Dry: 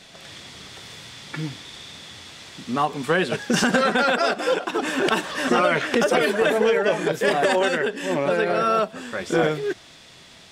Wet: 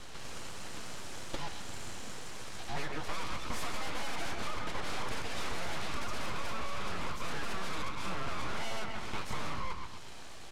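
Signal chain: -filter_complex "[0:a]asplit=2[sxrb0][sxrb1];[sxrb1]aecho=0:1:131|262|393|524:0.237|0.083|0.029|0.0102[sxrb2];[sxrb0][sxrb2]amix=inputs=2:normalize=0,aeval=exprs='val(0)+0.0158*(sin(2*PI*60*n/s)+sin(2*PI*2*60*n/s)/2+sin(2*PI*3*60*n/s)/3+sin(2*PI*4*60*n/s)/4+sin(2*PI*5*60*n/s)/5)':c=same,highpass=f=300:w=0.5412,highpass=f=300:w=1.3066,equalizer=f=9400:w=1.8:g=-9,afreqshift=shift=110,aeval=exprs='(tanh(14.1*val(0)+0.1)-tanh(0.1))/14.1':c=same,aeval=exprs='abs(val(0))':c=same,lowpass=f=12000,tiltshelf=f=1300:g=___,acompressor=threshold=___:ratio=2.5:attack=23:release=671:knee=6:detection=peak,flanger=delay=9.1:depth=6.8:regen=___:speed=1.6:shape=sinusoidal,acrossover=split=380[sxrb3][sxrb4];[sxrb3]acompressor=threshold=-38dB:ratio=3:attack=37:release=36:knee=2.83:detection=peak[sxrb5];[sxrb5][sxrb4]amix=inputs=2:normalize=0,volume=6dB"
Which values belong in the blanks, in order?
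3.5, -32dB, -65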